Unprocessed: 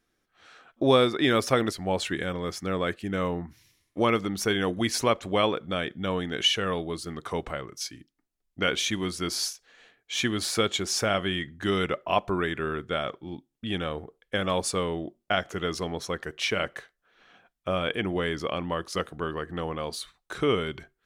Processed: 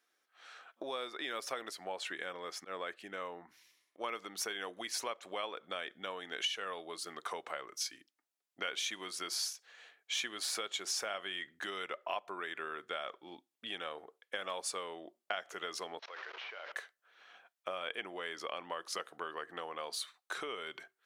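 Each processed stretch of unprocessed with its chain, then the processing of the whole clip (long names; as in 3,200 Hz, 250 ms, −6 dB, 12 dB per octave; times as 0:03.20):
0:01.84–0:04.04: high-shelf EQ 5,300 Hz −5.5 dB + volume swells 143 ms
0:15.99–0:16.72: linear delta modulator 32 kbit/s, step −33.5 dBFS + three-way crossover with the lows and the highs turned down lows −20 dB, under 420 Hz, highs −19 dB, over 3,700 Hz + output level in coarse steps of 22 dB
whole clip: downward compressor 6 to 1, threshold −32 dBFS; high-pass filter 610 Hz 12 dB per octave; level −1 dB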